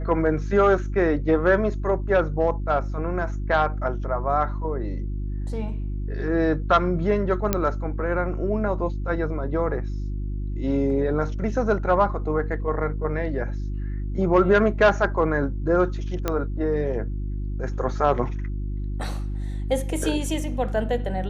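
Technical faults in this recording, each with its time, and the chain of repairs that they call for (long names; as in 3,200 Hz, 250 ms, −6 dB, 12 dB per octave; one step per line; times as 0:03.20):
mains hum 50 Hz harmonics 7 −28 dBFS
0:07.53: click −6 dBFS
0:16.28: click −10 dBFS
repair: click removal
hum removal 50 Hz, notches 7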